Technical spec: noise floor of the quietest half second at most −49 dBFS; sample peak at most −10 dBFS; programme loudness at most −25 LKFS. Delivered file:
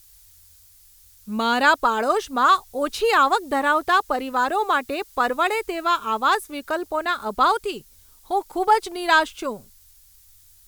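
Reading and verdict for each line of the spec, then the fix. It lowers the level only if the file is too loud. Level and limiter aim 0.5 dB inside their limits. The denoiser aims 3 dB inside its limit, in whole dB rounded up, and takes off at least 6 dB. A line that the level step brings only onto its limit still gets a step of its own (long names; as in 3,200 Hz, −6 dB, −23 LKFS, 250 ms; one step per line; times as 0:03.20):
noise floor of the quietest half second −53 dBFS: in spec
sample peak −6.0 dBFS: out of spec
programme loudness −21.5 LKFS: out of spec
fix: level −4 dB
brickwall limiter −10.5 dBFS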